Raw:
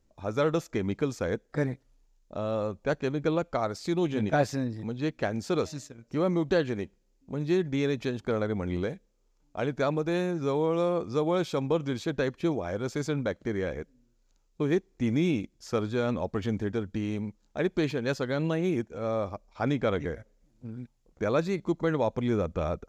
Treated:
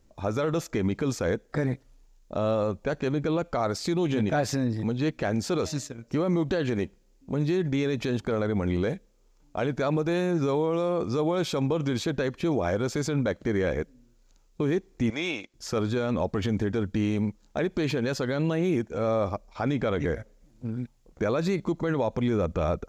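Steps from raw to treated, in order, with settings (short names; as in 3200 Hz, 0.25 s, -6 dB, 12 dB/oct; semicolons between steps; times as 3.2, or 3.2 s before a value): 15.1–15.54 three-band isolator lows -23 dB, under 520 Hz, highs -14 dB, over 7000 Hz; limiter -24.5 dBFS, peak gain reduction 11.5 dB; gain +7.5 dB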